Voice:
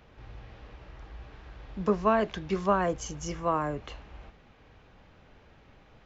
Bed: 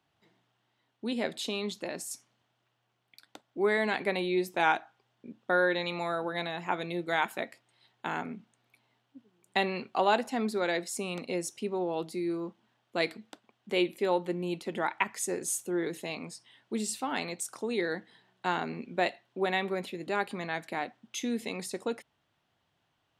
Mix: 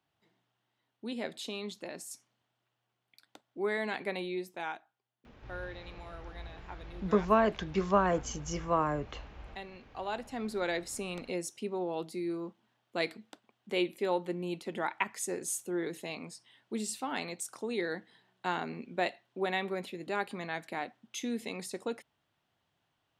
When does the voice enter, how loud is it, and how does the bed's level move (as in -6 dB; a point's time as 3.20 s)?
5.25 s, -1.0 dB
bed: 4.22 s -5.5 dB
4.90 s -16.5 dB
9.79 s -16.5 dB
10.61 s -3 dB